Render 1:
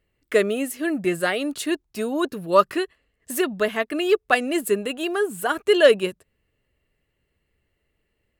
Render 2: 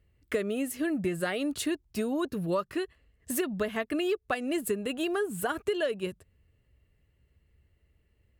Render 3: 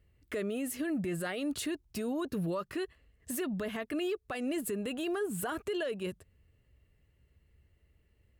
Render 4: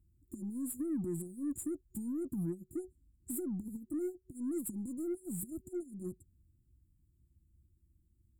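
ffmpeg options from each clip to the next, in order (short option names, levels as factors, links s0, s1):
-af "equalizer=f=72:t=o:w=2.3:g=14,acompressor=threshold=0.0708:ratio=10,volume=0.708"
-af "alimiter=level_in=1.41:limit=0.0631:level=0:latency=1:release=18,volume=0.708"
-af "afftfilt=real='re*(1-between(b*sr/4096,370,6900))':imag='im*(1-between(b*sr/4096,370,6900))':win_size=4096:overlap=0.75,aeval=exprs='0.0531*(cos(1*acos(clip(val(0)/0.0531,-1,1)))-cos(1*PI/2))+0.00106*(cos(8*acos(clip(val(0)/0.0531,-1,1)))-cos(8*PI/2))':c=same,volume=0.794"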